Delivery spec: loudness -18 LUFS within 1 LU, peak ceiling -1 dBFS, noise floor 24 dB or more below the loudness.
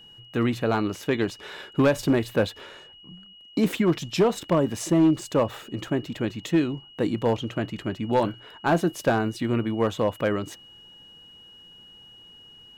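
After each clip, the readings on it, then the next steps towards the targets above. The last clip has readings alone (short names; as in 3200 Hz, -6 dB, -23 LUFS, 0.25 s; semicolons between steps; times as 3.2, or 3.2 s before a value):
clipped 0.4%; flat tops at -13.5 dBFS; steady tone 2900 Hz; tone level -47 dBFS; loudness -25.5 LUFS; peak -13.5 dBFS; loudness target -18.0 LUFS
-> clip repair -13.5 dBFS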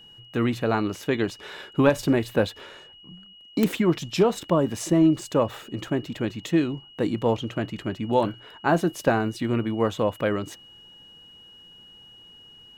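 clipped 0.0%; steady tone 2900 Hz; tone level -47 dBFS
-> notch 2900 Hz, Q 30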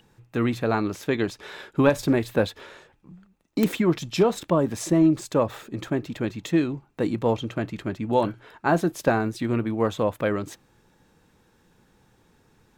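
steady tone none; loudness -25.0 LUFS; peak -4.5 dBFS; loudness target -18.0 LUFS
-> gain +7 dB; limiter -1 dBFS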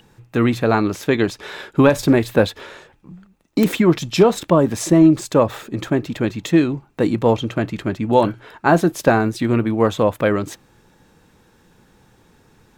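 loudness -18.0 LUFS; peak -1.0 dBFS; noise floor -56 dBFS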